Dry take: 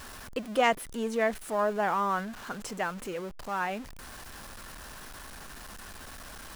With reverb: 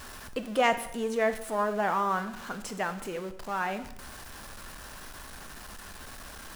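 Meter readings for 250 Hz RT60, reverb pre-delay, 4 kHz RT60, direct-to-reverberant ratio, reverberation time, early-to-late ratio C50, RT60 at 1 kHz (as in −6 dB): 0.85 s, 7 ms, 0.80 s, 10.0 dB, 0.80 s, 12.5 dB, 0.80 s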